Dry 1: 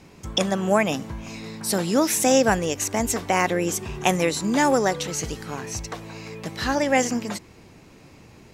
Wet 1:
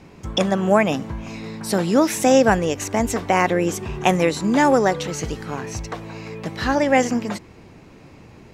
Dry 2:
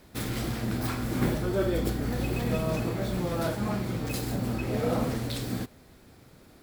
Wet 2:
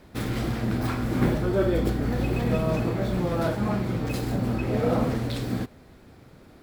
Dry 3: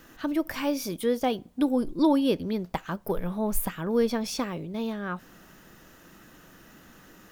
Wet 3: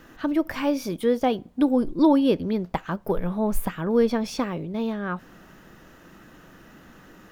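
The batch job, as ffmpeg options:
-af "highshelf=frequency=4200:gain=-10,volume=4dB"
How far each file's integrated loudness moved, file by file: +3.0, +3.5, +3.5 LU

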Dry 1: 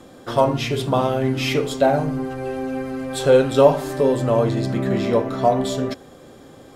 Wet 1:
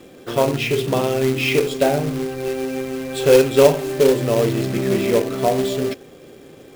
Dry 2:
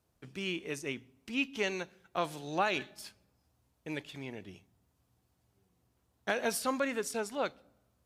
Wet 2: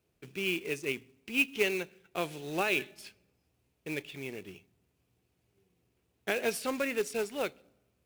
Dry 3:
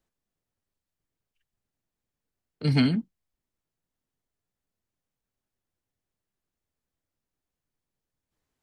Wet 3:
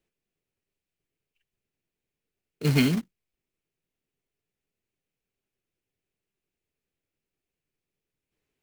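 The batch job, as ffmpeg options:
-af "equalizer=frequency=160:width_type=o:width=0.67:gain=4,equalizer=frequency=400:width_type=o:width=0.67:gain=9,equalizer=frequency=1000:width_type=o:width=0.67:gain=-3,equalizer=frequency=2500:width_type=o:width=0.67:gain=10,acrusher=bits=3:mode=log:mix=0:aa=0.000001,volume=-3.5dB"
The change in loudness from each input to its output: +1.5, +2.5, +0.5 LU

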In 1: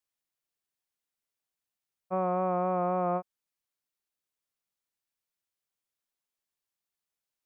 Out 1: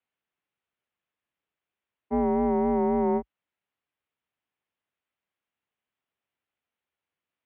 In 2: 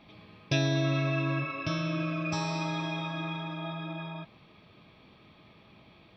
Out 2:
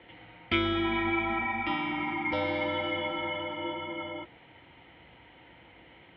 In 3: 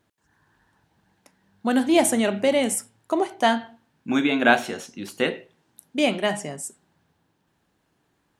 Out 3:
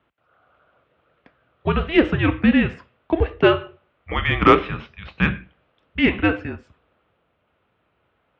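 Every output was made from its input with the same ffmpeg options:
-af "highpass=frequency=320:width_type=q:width=0.5412,highpass=frequency=320:width_type=q:width=1.307,lowpass=frequency=3500:width_type=q:width=0.5176,lowpass=frequency=3500:width_type=q:width=0.7071,lowpass=frequency=3500:width_type=q:width=1.932,afreqshift=-320,acontrast=21,highpass=frequency=54:width=0.5412,highpass=frequency=54:width=1.3066,volume=1dB"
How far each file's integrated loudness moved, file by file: +4.5, +1.0, +3.0 LU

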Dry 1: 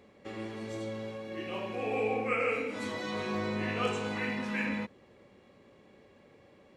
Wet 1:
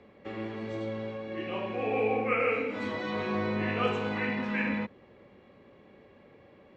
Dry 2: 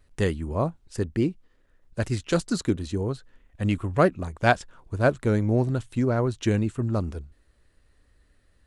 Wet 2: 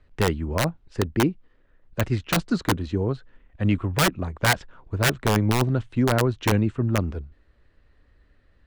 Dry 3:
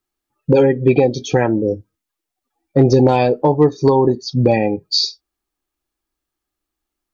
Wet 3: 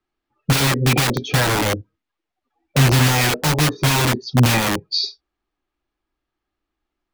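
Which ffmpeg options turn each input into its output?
-filter_complex "[0:a]lowpass=3200,acrossover=split=200|1100[link_01][link_02][link_03];[link_02]aeval=exprs='(mod(7.94*val(0)+1,2)-1)/7.94':channel_layout=same[link_04];[link_01][link_04][link_03]amix=inputs=3:normalize=0,volume=3dB"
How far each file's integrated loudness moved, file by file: +2.5, +1.5, −2.5 LU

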